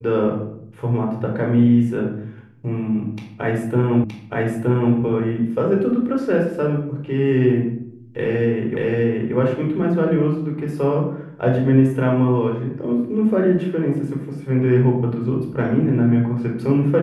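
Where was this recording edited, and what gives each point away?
0:04.04: the same again, the last 0.92 s
0:08.77: the same again, the last 0.58 s

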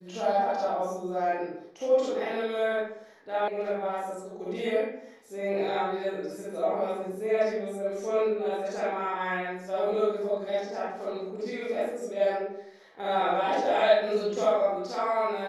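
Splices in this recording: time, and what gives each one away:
0:03.48: cut off before it has died away

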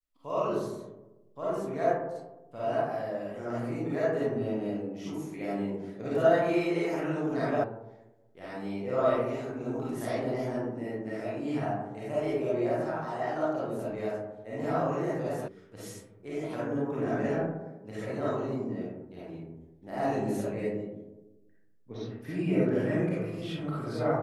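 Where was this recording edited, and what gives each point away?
0:07.64: cut off before it has died away
0:15.48: cut off before it has died away

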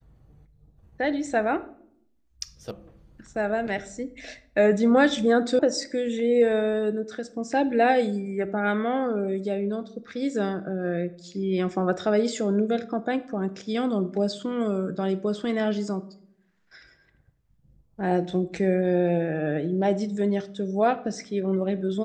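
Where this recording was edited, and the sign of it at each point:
0:02.71: cut off before it has died away
0:05.59: cut off before it has died away

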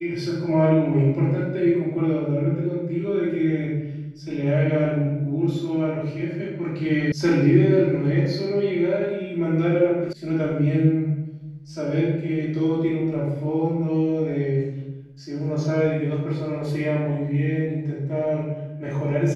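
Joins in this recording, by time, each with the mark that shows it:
0:07.12: cut off before it has died away
0:10.13: cut off before it has died away

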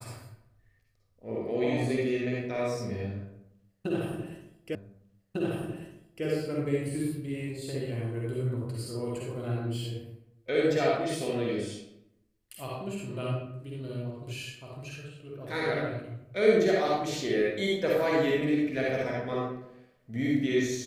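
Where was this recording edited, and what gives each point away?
0:04.75: the same again, the last 1.5 s

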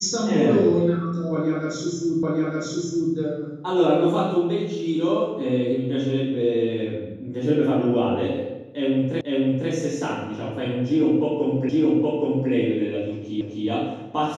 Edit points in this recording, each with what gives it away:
0:02.23: the same again, the last 0.91 s
0:09.21: the same again, the last 0.5 s
0:11.69: the same again, the last 0.82 s
0:13.41: the same again, the last 0.26 s

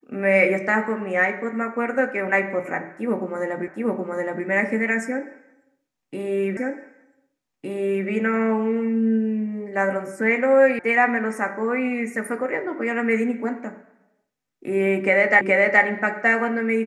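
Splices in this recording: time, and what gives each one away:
0:03.68: the same again, the last 0.77 s
0:06.57: the same again, the last 1.51 s
0:10.79: cut off before it has died away
0:15.41: the same again, the last 0.42 s

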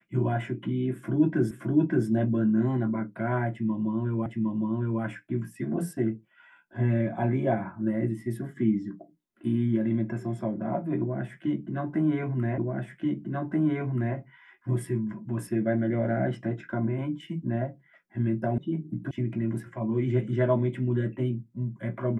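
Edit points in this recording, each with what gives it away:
0:01.51: the same again, the last 0.57 s
0:04.26: the same again, the last 0.76 s
0:12.58: the same again, the last 1.58 s
0:18.58: cut off before it has died away
0:19.11: cut off before it has died away

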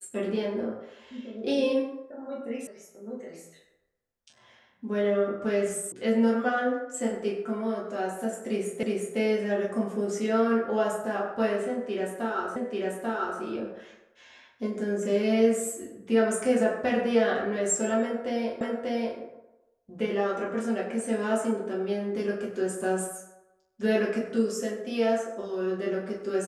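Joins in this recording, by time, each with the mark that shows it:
0:02.67: cut off before it has died away
0:05.92: cut off before it has died away
0:08.83: the same again, the last 0.36 s
0:12.56: the same again, the last 0.84 s
0:18.61: the same again, the last 0.59 s

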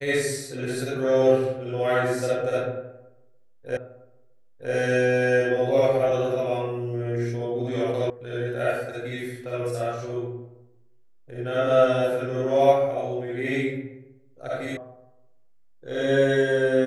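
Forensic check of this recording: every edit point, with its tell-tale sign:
0:03.77: the same again, the last 0.96 s
0:08.10: cut off before it has died away
0:14.77: cut off before it has died away

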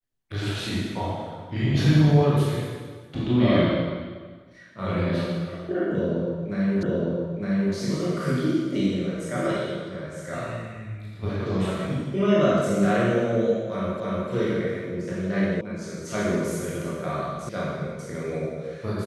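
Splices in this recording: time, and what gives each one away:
0:06.83: the same again, the last 0.91 s
0:14.00: the same again, the last 0.3 s
0:15.61: cut off before it has died away
0:17.49: cut off before it has died away

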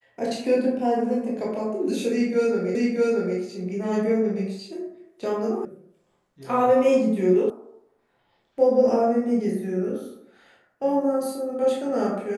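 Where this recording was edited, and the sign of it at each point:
0:02.75: the same again, the last 0.63 s
0:05.65: cut off before it has died away
0:07.50: cut off before it has died away

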